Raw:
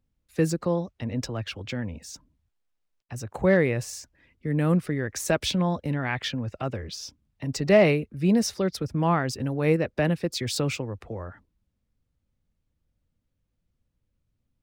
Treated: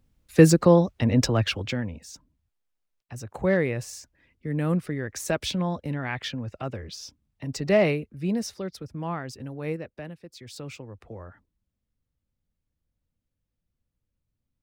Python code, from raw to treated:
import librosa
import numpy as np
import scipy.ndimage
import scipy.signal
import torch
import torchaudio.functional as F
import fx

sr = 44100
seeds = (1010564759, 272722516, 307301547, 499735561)

y = fx.gain(x, sr, db=fx.line((1.45, 9.0), (2.01, -2.5), (7.83, -2.5), (8.79, -8.5), (9.69, -8.5), (10.21, -18.0), (11.12, -5.5)))